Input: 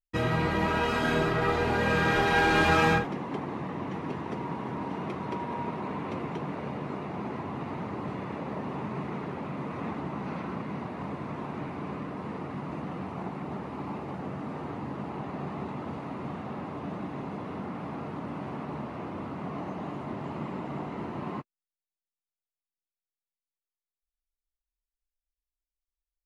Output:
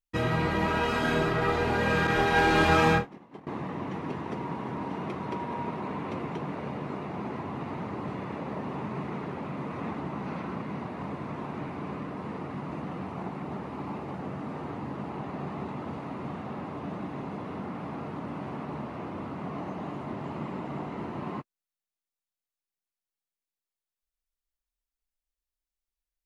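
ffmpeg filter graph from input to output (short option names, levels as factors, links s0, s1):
-filter_complex "[0:a]asettb=1/sr,asplit=3[s0][s1][s2];[s0]atrim=end=2.074[s3];[s1]atrim=start=2.07:end=3.47,asetpts=PTS-STARTPTS,afade=t=in:d=0.004:c=qsin,afade=t=out:st=1.396:d=0.004:c=qsin,agate=range=0.0224:threshold=0.0631:ratio=3:release=100:detection=peak,asplit=2[s4][s5];[s5]adelay=25,volume=0.299[s6];[s4][s6]amix=inputs=2:normalize=0,atrim=end_sample=61740[s7];[s2]atrim=start=3.466[s8];[s3][s7]acrossfade=d=0.004:c1=hsin:c2=qsin[s9];[s9][s8]acrossfade=d=0.004:c1=qsin:c2=hsin"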